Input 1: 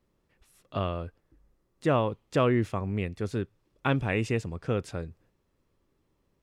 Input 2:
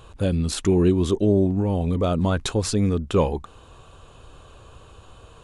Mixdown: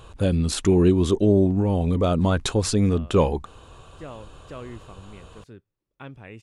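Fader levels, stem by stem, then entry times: −14.5, +1.0 decibels; 2.15, 0.00 seconds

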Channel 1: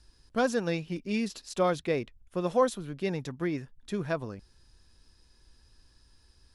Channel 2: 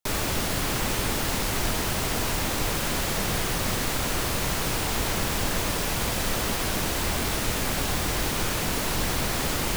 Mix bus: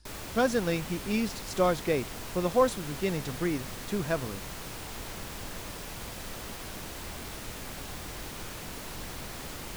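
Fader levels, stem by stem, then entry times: +1.0, −13.5 decibels; 0.00, 0.00 seconds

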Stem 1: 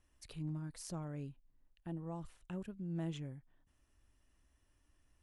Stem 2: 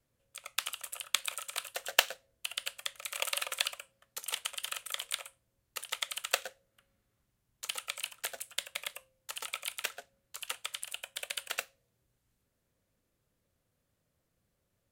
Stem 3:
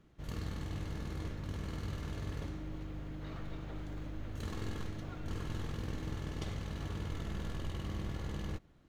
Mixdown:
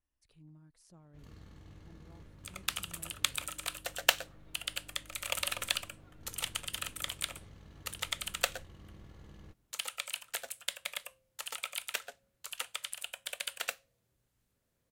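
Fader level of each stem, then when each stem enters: −15.5, −0.5, −14.0 decibels; 0.00, 2.10, 0.95 seconds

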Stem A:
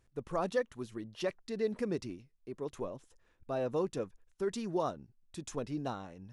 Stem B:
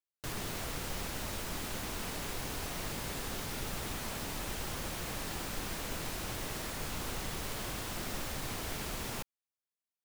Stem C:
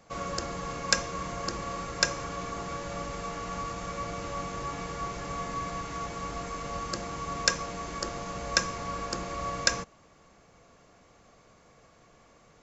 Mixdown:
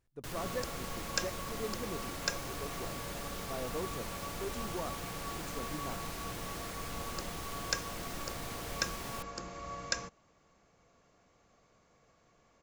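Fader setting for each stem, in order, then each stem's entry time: −7.0, −4.0, −9.0 decibels; 0.00, 0.00, 0.25 seconds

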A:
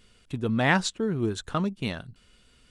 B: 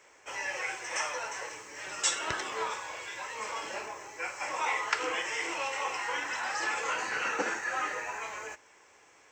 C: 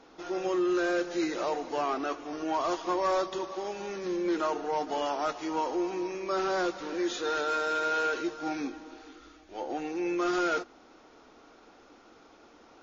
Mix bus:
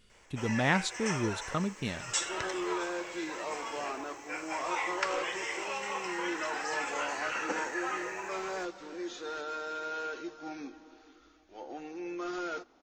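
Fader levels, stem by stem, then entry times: −5.0, −3.0, −8.5 decibels; 0.00, 0.10, 2.00 seconds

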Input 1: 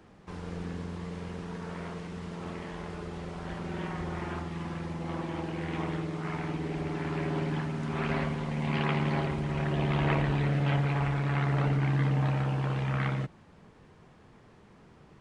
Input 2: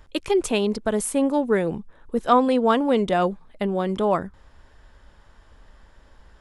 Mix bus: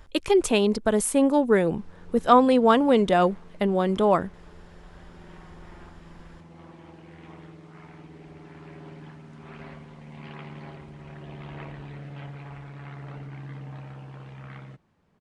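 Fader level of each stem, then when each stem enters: −12.5, +1.0 decibels; 1.50, 0.00 seconds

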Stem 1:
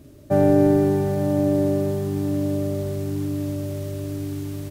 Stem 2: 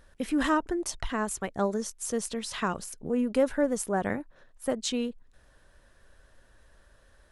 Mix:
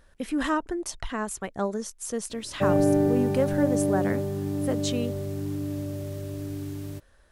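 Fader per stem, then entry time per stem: −5.0, −0.5 decibels; 2.30, 0.00 seconds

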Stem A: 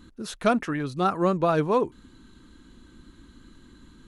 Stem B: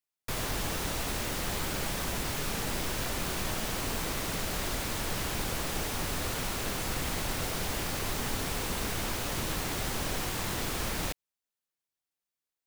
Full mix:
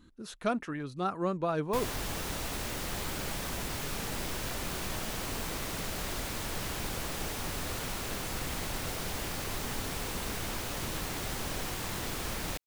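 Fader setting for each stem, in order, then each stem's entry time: −8.5, −3.0 decibels; 0.00, 1.45 seconds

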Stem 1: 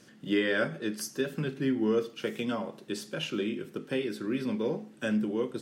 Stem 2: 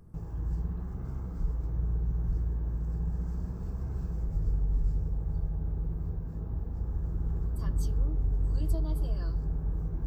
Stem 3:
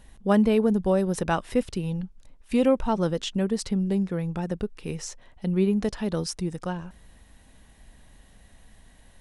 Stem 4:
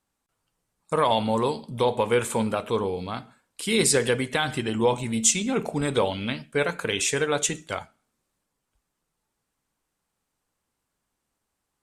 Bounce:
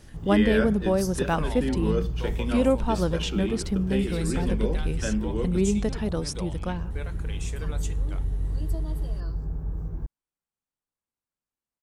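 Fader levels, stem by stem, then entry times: 0.0, +0.5, −1.0, −16.5 decibels; 0.00, 0.00, 0.00, 0.40 seconds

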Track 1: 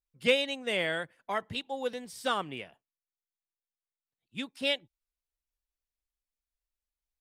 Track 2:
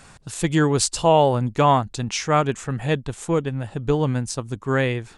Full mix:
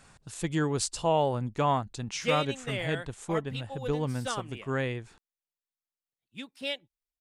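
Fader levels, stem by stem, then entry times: −4.5, −9.5 decibels; 2.00, 0.00 seconds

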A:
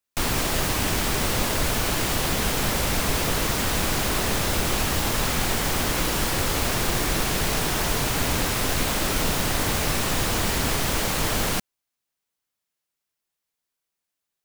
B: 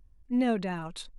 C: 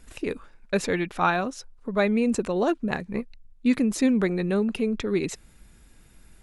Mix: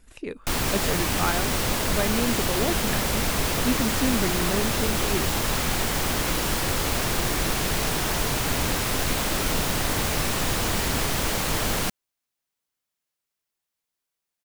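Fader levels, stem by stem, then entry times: −1.0 dB, muted, −4.5 dB; 0.30 s, muted, 0.00 s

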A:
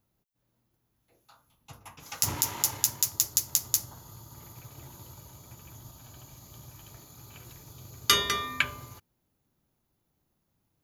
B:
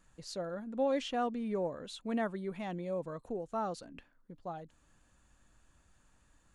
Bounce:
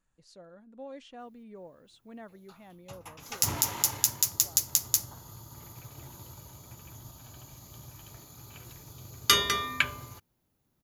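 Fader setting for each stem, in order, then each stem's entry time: +0.5, −12.5 decibels; 1.20, 0.00 seconds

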